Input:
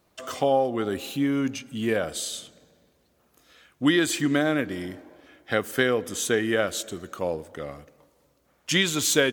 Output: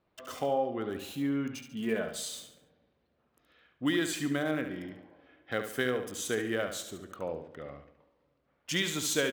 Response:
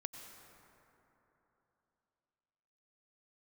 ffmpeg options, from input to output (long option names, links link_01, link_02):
-filter_complex "[0:a]asettb=1/sr,asplit=3[link_01][link_02][link_03];[link_01]atrim=end=1.754[link_04];[link_02]atrim=start=1.75:end=2.29,asetpts=PTS-STARTPTS,afade=type=in:duration=0.004:curve=qsin,afade=type=out:start_time=0.536:duration=0.004:curve=qsin,aecho=1:1:4.7:0.6,atrim=end_sample=23814[link_05];[link_03]atrim=start=2.286[link_06];[link_04][link_05]acrossfade=duration=0.004:curve1=hsin:curve2=qsin[link_07];[link_07][link_06]acrossfade=duration=0.004:curve1=qsin:curve2=hsin,acrossover=split=4000[link_08][link_09];[link_09]acrusher=bits=6:mix=0:aa=0.000001[link_10];[link_08][link_10]amix=inputs=2:normalize=0,aecho=1:1:71|142|213|284:0.376|0.147|0.0572|0.0223,volume=-8.5dB"